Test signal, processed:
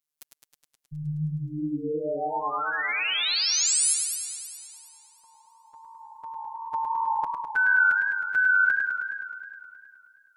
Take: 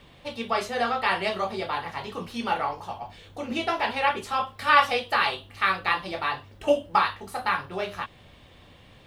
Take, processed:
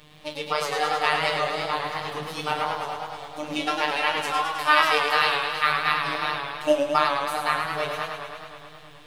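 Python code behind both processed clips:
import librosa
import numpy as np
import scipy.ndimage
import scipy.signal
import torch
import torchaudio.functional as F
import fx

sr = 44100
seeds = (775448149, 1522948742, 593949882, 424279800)

y = fx.high_shelf(x, sr, hz=4400.0, db=7.0)
y = fx.robotise(y, sr, hz=151.0)
y = fx.echo_warbled(y, sr, ms=105, feedback_pct=75, rate_hz=2.8, cents=115, wet_db=-5.5)
y = y * 10.0 ** (2.0 / 20.0)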